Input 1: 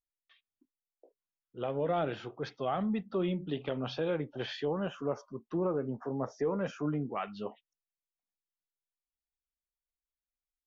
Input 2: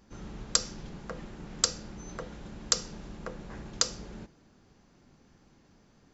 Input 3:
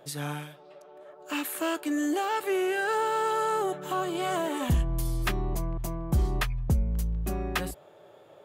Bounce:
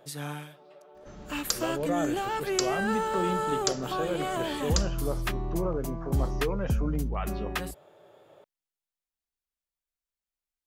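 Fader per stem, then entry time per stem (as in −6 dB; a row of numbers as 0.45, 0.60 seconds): +0.5, −3.5, −2.5 decibels; 0.00, 0.95, 0.00 seconds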